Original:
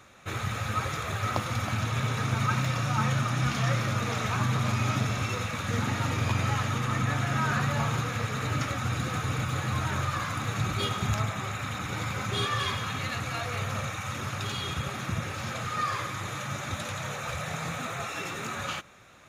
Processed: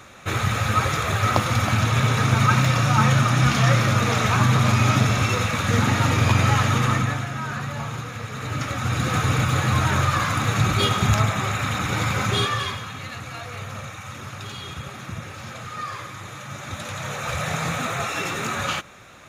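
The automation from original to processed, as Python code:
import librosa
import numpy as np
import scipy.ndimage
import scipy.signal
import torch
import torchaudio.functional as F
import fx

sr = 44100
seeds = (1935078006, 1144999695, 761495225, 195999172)

y = fx.gain(x, sr, db=fx.line((6.88, 9.0), (7.33, -2.0), (8.24, -2.0), (9.17, 9.0), (12.29, 9.0), (12.9, -2.0), (16.43, -2.0), (17.45, 8.0)))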